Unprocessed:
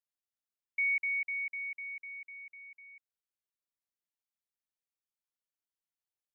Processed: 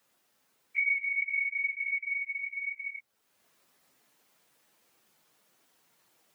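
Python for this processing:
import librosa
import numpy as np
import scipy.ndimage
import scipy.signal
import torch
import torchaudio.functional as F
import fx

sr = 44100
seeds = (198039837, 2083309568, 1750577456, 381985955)

p1 = fx.phase_scramble(x, sr, seeds[0], window_ms=50)
p2 = fx.rider(p1, sr, range_db=3, speed_s=0.5)
p3 = p1 + (p2 * 10.0 ** (1.0 / 20.0))
p4 = fx.high_shelf(p3, sr, hz=2200.0, db=-8.0)
p5 = fx.band_squash(p4, sr, depth_pct=70)
y = p5 * 10.0 ** (3.0 / 20.0)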